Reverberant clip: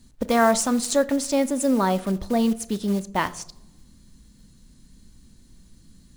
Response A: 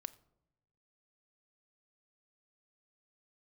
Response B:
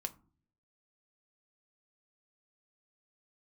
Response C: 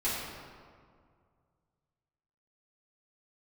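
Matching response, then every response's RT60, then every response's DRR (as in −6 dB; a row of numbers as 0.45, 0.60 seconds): A; non-exponential decay, 0.45 s, 2.1 s; 11.5, 7.5, −10.5 decibels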